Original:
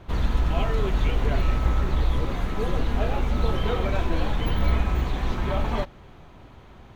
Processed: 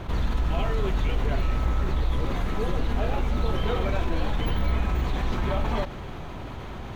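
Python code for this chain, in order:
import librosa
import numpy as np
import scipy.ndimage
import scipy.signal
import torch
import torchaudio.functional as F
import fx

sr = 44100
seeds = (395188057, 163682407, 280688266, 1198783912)

y = fx.env_flatten(x, sr, amount_pct=50)
y = F.gain(torch.from_numpy(y), -4.0).numpy()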